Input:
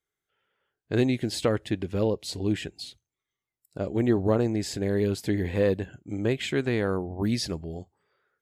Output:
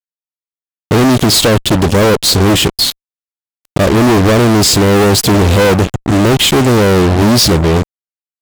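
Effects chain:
flat-topped bell 1,400 Hz −14 dB
fuzz pedal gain 47 dB, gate −44 dBFS
level +6 dB

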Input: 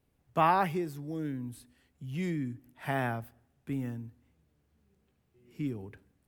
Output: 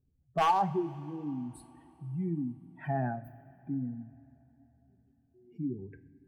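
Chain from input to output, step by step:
expanding power law on the bin magnitudes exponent 2.3
wave folding −20 dBFS
coupled-rooms reverb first 0.38 s, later 3.7 s, from −17 dB, DRR 9.5 dB

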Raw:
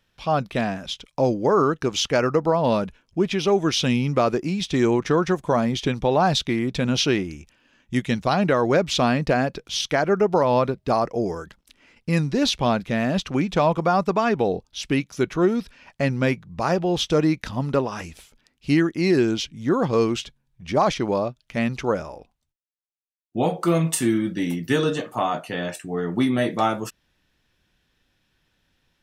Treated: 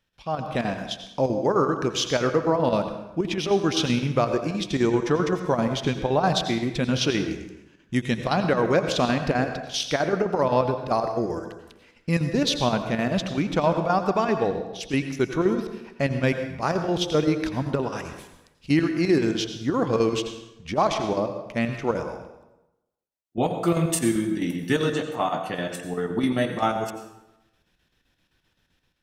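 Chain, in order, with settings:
square-wave tremolo 7.7 Hz, depth 60%, duty 70%
convolution reverb RT60 0.90 s, pre-delay 77 ms, DRR 7.5 dB
automatic gain control gain up to 7 dB
level −7 dB

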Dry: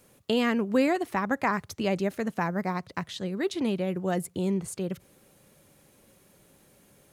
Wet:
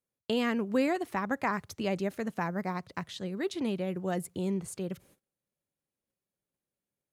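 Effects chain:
noise gate −54 dBFS, range −29 dB
level −4 dB

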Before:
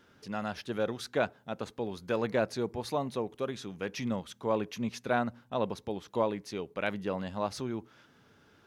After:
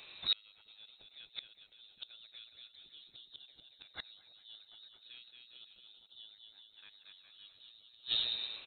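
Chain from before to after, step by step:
bouncing-ball delay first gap 230 ms, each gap 0.8×, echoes 5
voice inversion scrambler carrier 4,000 Hz
gate with flip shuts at −27 dBFS, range −35 dB
level +8.5 dB

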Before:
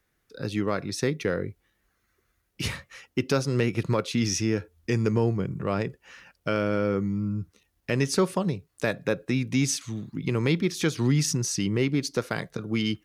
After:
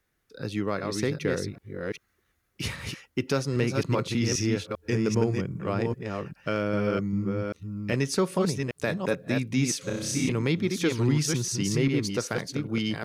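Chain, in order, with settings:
delay that plays each chunk backwards 396 ms, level −4 dB
0:09.84–0:10.29: flutter between parallel walls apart 5.3 metres, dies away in 0.79 s
level −2 dB

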